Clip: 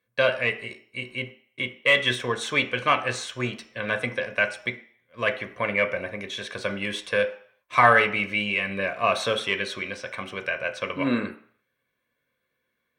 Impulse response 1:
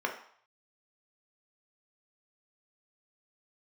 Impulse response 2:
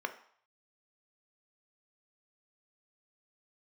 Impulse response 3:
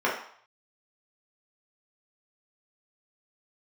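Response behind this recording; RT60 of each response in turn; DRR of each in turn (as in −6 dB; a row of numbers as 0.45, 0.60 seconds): 2; 0.60, 0.60, 0.60 seconds; 1.5, 7.5, −5.5 decibels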